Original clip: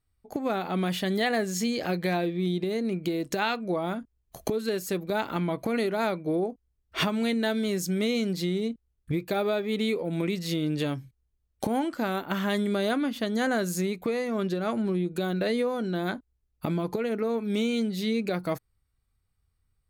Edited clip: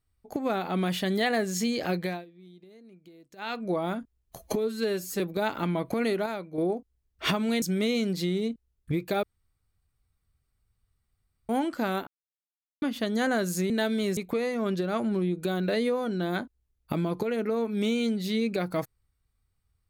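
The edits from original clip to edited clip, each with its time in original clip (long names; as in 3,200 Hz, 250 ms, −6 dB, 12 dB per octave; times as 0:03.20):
0:01.97–0:03.64: duck −23.5 dB, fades 0.28 s
0:04.39–0:04.93: time-stretch 1.5×
0:05.99–0:06.31: clip gain −7 dB
0:07.35–0:07.82: move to 0:13.90
0:09.43–0:11.69: fill with room tone
0:12.27–0:13.02: silence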